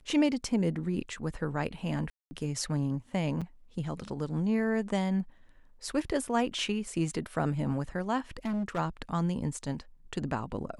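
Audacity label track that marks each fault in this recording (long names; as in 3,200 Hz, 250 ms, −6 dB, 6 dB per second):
2.100000	2.310000	drop-out 210 ms
3.410000	3.420000	drop-out 6 ms
8.370000	8.790000	clipping −28.5 dBFS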